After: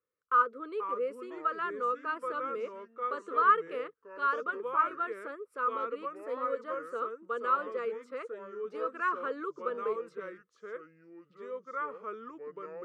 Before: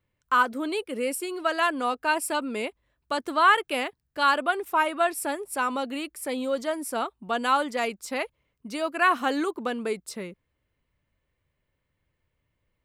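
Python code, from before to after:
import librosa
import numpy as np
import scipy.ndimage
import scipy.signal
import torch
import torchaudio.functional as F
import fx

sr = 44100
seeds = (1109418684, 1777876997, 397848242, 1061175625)

y = fx.echo_pitch(x, sr, ms=402, semitones=-4, count=2, db_per_echo=-6.0)
y = fx.wow_flutter(y, sr, seeds[0], rate_hz=2.1, depth_cents=20.0)
y = fx.double_bandpass(y, sr, hz=770.0, octaves=1.4)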